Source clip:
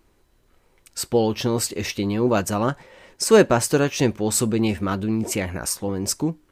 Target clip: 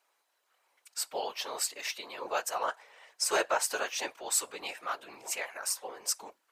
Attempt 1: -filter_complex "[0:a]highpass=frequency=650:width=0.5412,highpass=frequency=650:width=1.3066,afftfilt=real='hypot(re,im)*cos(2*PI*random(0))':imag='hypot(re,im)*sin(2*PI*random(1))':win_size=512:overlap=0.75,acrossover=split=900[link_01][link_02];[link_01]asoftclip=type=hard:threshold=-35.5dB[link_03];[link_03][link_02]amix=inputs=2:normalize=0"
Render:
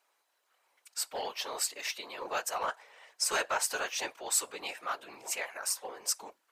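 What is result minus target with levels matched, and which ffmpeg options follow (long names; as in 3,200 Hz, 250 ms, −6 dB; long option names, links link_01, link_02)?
hard clipping: distortion +20 dB
-filter_complex "[0:a]highpass=frequency=650:width=0.5412,highpass=frequency=650:width=1.3066,afftfilt=real='hypot(re,im)*cos(2*PI*random(0))':imag='hypot(re,im)*sin(2*PI*random(1))':win_size=512:overlap=0.75,acrossover=split=900[link_01][link_02];[link_01]asoftclip=type=hard:threshold=-23.5dB[link_03];[link_03][link_02]amix=inputs=2:normalize=0"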